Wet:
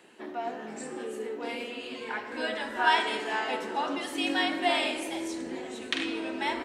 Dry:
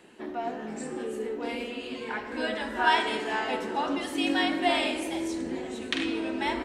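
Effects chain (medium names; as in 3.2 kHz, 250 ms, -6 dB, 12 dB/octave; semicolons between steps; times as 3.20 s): high-pass 67 Hz; bass shelf 260 Hz -9 dB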